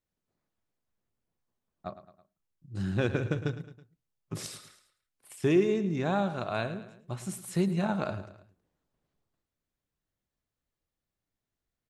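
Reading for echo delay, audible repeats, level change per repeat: 108 ms, 3, -6.0 dB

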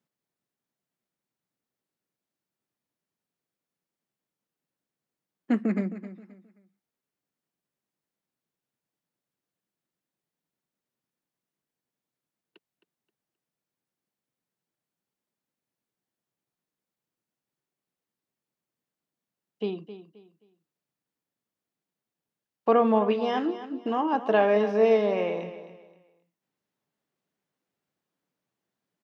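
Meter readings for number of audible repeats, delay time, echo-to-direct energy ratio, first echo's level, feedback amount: 3, 264 ms, -12.5 dB, -13.0 dB, 29%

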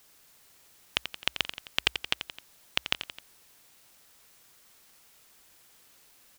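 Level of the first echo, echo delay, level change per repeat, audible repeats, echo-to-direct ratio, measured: -10.0 dB, 87 ms, -5.0 dB, 3, -8.5 dB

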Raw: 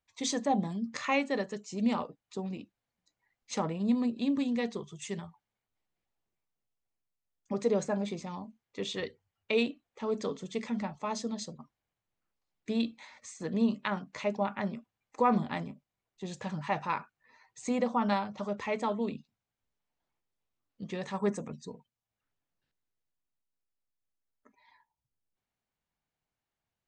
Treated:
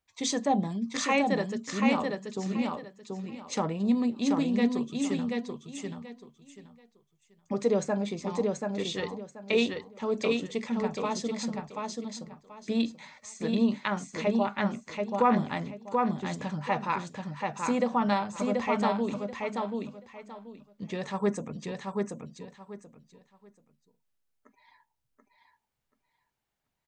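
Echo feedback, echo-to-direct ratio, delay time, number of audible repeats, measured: 23%, -3.5 dB, 733 ms, 3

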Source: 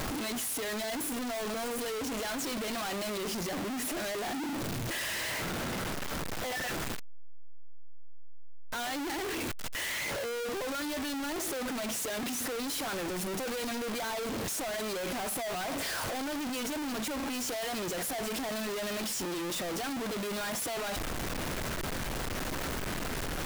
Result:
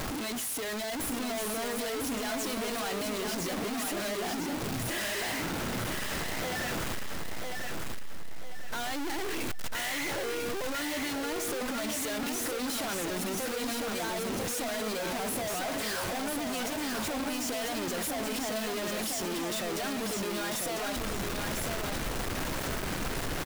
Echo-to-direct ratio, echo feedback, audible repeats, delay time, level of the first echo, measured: -3.5 dB, 35%, 4, 997 ms, -4.0 dB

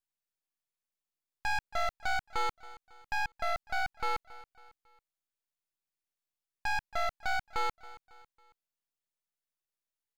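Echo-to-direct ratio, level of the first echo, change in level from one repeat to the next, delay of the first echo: -18.0 dB, -19.0 dB, -7.0 dB, 275 ms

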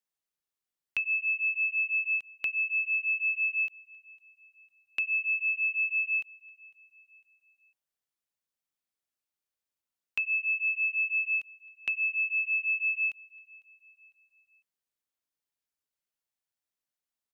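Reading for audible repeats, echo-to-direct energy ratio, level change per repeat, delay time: 2, -23.0 dB, -7.0 dB, 502 ms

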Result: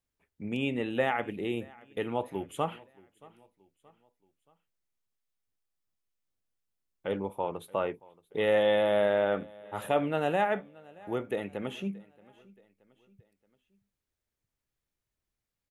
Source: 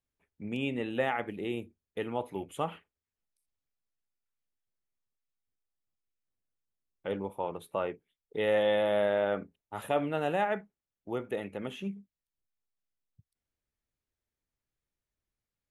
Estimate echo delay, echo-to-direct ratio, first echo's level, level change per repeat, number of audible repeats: 626 ms, -22.5 dB, -23.5 dB, -7.0 dB, 2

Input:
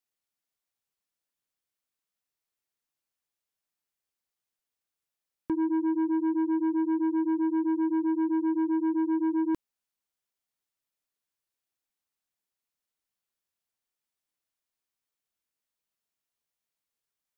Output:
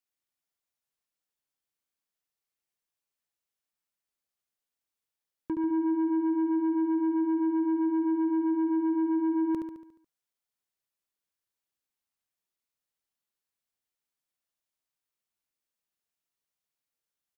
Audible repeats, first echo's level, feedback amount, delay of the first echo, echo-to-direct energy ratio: 6, -6.0 dB, 54%, 71 ms, -4.5 dB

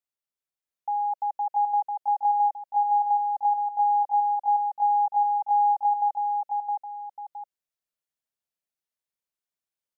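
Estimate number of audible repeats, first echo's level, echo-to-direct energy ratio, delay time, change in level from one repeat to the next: 2, -3.0 dB, -2.5 dB, 665 ms, -7.5 dB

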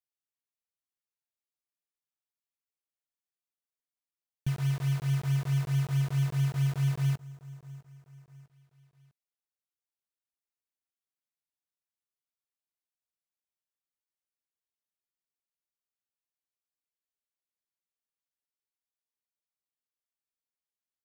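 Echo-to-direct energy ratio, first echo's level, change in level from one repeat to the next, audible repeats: -20.0 dB, -21.0 dB, -6.5 dB, 3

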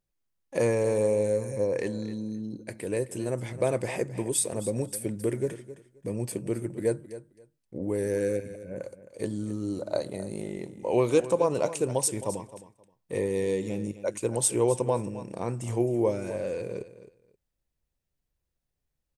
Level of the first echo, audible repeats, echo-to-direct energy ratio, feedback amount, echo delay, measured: -14.5 dB, 2, -14.5 dB, 18%, 264 ms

